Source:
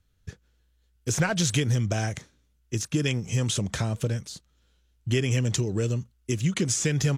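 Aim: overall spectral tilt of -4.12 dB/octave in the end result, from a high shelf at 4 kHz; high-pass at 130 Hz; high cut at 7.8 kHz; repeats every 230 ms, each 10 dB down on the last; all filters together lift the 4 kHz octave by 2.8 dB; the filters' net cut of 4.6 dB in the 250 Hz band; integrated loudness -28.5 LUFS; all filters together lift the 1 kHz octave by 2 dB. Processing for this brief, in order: high-pass 130 Hz; low-pass 7.8 kHz; peaking EQ 250 Hz -6 dB; peaking EQ 1 kHz +3.5 dB; treble shelf 4 kHz -8.5 dB; peaking EQ 4 kHz +9 dB; feedback delay 230 ms, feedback 32%, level -10 dB; trim +0.5 dB

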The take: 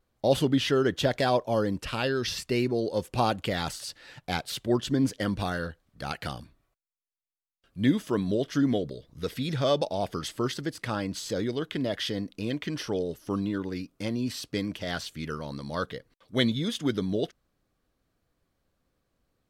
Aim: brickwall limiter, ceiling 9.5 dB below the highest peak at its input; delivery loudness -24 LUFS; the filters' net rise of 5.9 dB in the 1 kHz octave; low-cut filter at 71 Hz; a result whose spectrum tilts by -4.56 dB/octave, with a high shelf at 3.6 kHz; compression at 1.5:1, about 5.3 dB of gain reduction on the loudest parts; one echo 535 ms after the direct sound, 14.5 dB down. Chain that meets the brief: high-pass 71 Hz; peaking EQ 1 kHz +8.5 dB; treble shelf 3.6 kHz -4 dB; compression 1.5:1, threshold -30 dBFS; peak limiter -20.5 dBFS; delay 535 ms -14.5 dB; trim +9 dB

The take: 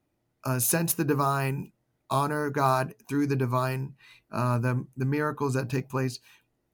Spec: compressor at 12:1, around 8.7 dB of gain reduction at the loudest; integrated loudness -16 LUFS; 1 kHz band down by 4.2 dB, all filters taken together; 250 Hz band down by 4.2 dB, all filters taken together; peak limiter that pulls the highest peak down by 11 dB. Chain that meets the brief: peaking EQ 250 Hz -5.5 dB; peaking EQ 1 kHz -5 dB; compression 12:1, threshold -30 dBFS; trim +24 dB; peak limiter -6 dBFS

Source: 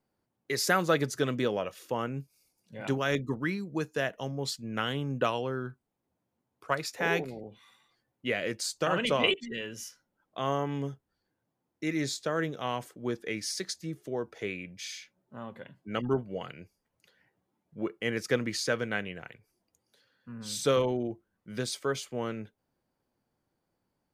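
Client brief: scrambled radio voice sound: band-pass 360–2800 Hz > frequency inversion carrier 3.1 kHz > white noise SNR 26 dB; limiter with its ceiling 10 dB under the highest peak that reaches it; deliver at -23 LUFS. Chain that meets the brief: peak limiter -20 dBFS; band-pass 360–2800 Hz; frequency inversion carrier 3.1 kHz; white noise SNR 26 dB; trim +11.5 dB

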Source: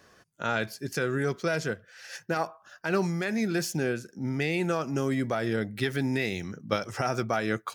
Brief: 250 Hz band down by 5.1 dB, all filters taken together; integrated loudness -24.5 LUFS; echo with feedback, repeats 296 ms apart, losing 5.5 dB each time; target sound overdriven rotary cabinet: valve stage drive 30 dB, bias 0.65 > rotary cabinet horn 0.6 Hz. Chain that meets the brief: peaking EQ 250 Hz -7 dB; feedback delay 296 ms, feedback 53%, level -5.5 dB; valve stage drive 30 dB, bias 0.65; rotary cabinet horn 0.6 Hz; trim +13.5 dB

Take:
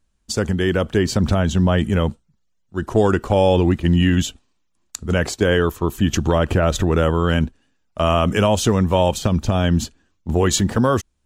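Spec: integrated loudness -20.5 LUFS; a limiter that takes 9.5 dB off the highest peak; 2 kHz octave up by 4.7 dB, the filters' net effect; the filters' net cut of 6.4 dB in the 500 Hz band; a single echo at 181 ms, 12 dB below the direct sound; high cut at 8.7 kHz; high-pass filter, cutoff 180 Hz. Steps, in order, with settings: high-pass 180 Hz; low-pass 8.7 kHz; peaking EQ 500 Hz -8.5 dB; peaking EQ 2 kHz +7 dB; peak limiter -15 dBFS; delay 181 ms -12 dB; trim +5.5 dB

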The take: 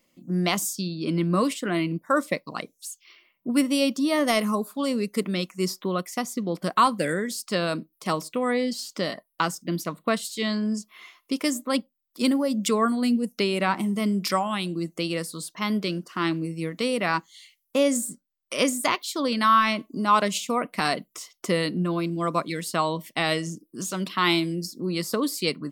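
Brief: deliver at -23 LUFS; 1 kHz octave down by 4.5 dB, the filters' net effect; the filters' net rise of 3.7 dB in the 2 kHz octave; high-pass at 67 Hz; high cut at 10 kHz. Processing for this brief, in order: high-pass 67 Hz; low-pass 10 kHz; peaking EQ 1 kHz -7.5 dB; peaking EQ 2 kHz +6.5 dB; trim +3 dB

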